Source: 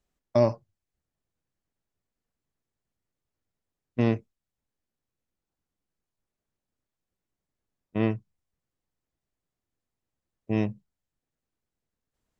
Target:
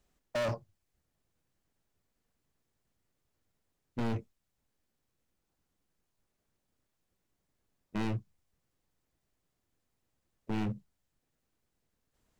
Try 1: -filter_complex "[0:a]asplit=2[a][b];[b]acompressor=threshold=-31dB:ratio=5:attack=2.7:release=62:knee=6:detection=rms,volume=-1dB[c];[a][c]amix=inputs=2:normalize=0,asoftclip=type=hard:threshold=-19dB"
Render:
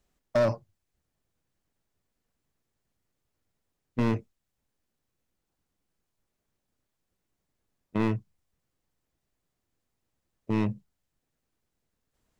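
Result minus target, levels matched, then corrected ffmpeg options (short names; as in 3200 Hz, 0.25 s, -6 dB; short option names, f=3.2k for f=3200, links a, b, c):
hard clip: distortion -6 dB
-filter_complex "[0:a]asplit=2[a][b];[b]acompressor=threshold=-31dB:ratio=5:attack=2.7:release=62:knee=6:detection=rms,volume=-1dB[c];[a][c]amix=inputs=2:normalize=0,asoftclip=type=hard:threshold=-30dB"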